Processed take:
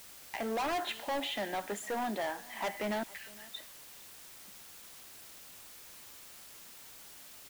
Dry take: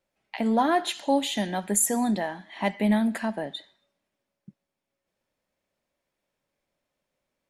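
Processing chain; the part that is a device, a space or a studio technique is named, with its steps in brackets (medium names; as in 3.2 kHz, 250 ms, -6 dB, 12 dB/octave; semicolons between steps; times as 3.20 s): 3.03–3.56 s: inverse Chebyshev high-pass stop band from 1.1 kHz, stop band 40 dB; high-pass 280 Hz 6 dB/octave; aircraft radio (band-pass 360–2500 Hz; hard clipper -31 dBFS, distortion -4 dB; white noise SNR 12 dB); delay 458 ms -22.5 dB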